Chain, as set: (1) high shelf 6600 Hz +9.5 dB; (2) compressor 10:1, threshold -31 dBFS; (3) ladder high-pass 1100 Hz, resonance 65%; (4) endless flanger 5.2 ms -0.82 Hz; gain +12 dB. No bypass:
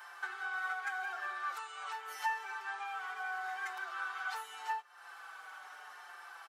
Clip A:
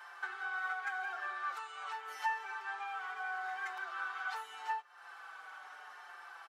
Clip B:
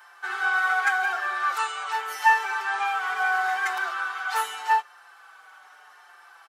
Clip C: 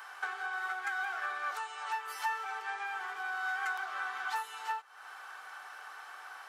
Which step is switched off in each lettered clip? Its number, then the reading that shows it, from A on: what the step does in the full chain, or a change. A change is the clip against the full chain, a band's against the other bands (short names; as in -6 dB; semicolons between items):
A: 1, 8 kHz band -5.0 dB; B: 2, crest factor change +1.5 dB; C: 4, loudness change +2.5 LU